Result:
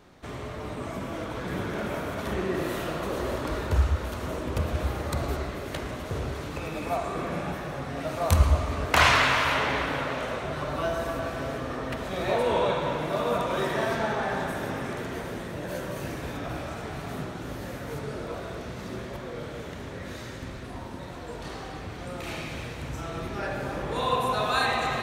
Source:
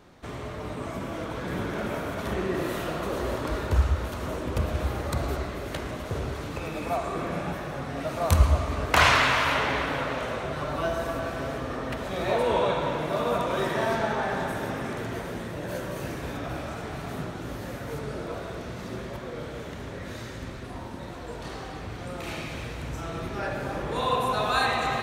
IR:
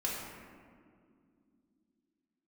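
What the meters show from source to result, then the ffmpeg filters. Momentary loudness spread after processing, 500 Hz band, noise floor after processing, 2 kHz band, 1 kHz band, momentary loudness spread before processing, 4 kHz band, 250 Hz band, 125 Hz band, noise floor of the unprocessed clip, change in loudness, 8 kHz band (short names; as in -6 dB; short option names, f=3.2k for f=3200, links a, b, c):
13 LU, -0.5 dB, -39 dBFS, 0.0 dB, -0.5 dB, 13 LU, 0.0 dB, -0.5 dB, -0.5 dB, -38 dBFS, -0.5 dB, 0.0 dB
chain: -af "bandreject=f=56.39:t=h:w=4,bandreject=f=112.78:t=h:w=4,bandreject=f=169.17:t=h:w=4,bandreject=f=225.56:t=h:w=4,bandreject=f=281.95:t=h:w=4,bandreject=f=338.34:t=h:w=4,bandreject=f=394.73:t=h:w=4,bandreject=f=451.12:t=h:w=4,bandreject=f=507.51:t=h:w=4,bandreject=f=563.9:t=h:w=4,bandreject=f=620.29:t=h:w=4,bandreject=f=676.68:t=h:w=4,bandreject=f=733.07:t=h:w=4,bandreject=f=789.46:t=h:w=4,bandreject=f=845.85:t=h:w=4,bandreject=f=902.24:t=h:w=4,bandreject=f=958.63:t=h:w=4,bandreject=f=1.01502k:t=h:w=4,bandreject=f=1.07141k:t=h:w=4,bandreject=f=1.1278k:t=h:w=4,bandreject=f=1.18419k:t=h:w=4,bandreject=f=1.24058k:t=h:w=4,bandreject=f=1.29697k:t=h:w=4,bandreject=f=1.35336k:t=h:w=4,bandreject=f=1.40975k:t=h:w=4,bandreject=f=1.46614k:t=h:w=4,bandreject=f=1.52253k:t=h:w=4,bandreject=f=1.57892k:t=h:w=4,bandreject=f=1.63531k:t=h:w=4"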